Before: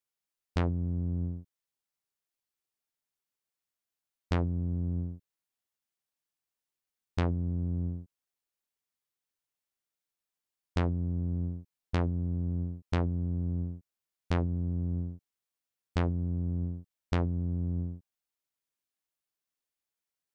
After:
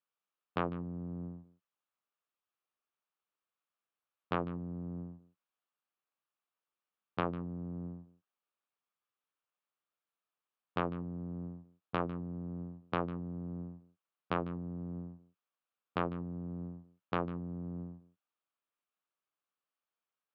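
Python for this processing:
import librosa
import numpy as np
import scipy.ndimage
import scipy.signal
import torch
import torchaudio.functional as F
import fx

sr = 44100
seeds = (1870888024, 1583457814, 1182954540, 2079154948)

y = fx.cabinet(x, sr, low_hz=150.0, low_slope=24, high_hz=3100.0, hz=(160.0, 250.0, 370.0, 1200.0, 2000.0), db=(-7, -6, -3, 7, -6))
y = y + 10.0 ** (-17.0 / 20.0) * np.pad(y, (int(150 * sr / 1000.0), 0))[:len(y)]
y = y * librosa.db_to_amplitude(1.0)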